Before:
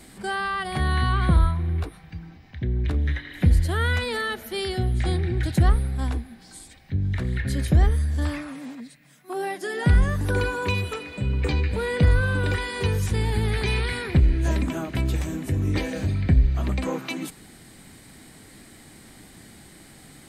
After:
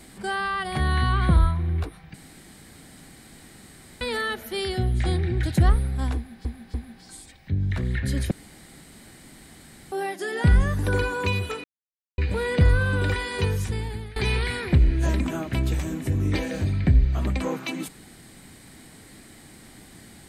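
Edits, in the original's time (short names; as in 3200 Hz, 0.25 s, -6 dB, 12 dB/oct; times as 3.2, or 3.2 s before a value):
2.14–4.01 room tone
6.16–6.45 loop, 3 plays
7.73–9.34 room tone
11.06–11.6 mute
12.84–13.58 fade out, to -21 dB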